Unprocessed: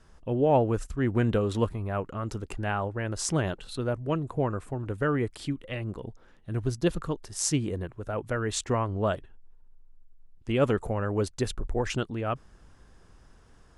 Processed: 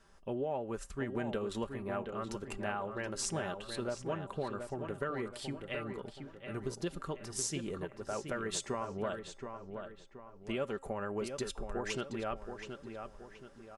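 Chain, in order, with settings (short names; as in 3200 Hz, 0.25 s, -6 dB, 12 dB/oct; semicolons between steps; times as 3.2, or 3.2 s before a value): low shelf 230 Hz -9.5 dB; comb 5.1 ms, depth 43%; compressor 6:1, threshold -30 dBFS, peak gain reduction 12 dB; resonator 270 Hz, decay 0.59 s, harmonics all, mix 40%; on a send: darkening echo 0.725 s, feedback 42%, low-pass 3200 Hz, level -7 dB; on the sum: gain +1 dB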